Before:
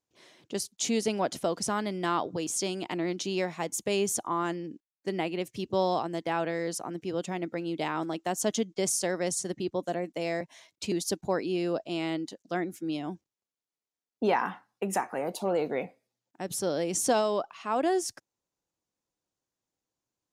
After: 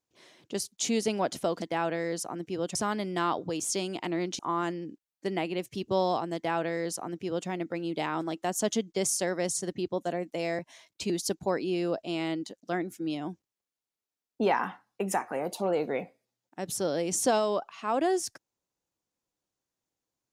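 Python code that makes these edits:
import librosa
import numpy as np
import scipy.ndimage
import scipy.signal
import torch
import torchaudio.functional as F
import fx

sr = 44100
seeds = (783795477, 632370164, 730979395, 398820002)

y = fx.edit(x, sr, fx.cut(start_s=3.26, length_s=0.95),
    fx.duplicate(start_s=6.17, length_s=1.13, to_s=1.62), tone=tone)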